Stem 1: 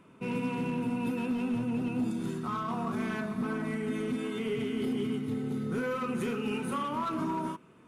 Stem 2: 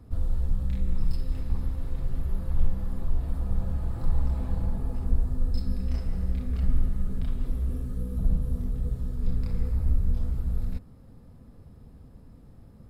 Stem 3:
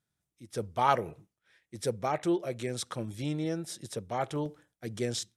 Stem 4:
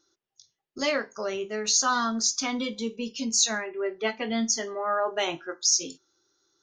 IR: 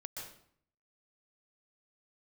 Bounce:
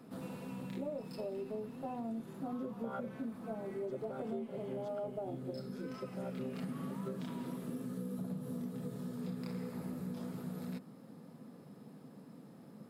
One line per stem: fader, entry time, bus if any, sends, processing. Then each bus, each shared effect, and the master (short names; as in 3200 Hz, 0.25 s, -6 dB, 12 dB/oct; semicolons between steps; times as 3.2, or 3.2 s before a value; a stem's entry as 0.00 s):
-9.0 dB, 0.00 s, no send, limiter -35 dBFS, peak gain reduction 10.5 dB; vibrato 0.69 Hz 15 cents
+2.5 dB, 0.00 s, no send, steep high-pass 160 Hz 36 dB/oct; auto duck -9 dB, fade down 1.55 s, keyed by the fourth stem
-15.0 dB, 2.05 s, no send, chord vocoder bare fifth, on C3; small resonant body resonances 320/500/1400/3300 Hz, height 16 dB, ringing for 35 ms
-5.5 dB, 0.00 s, no send, steep low-pass 790 Hz 48 dB/oct; running maximum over 3 samples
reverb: off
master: compressor 6:1, threshold -37 dBFS, peak gain reduction 11 dB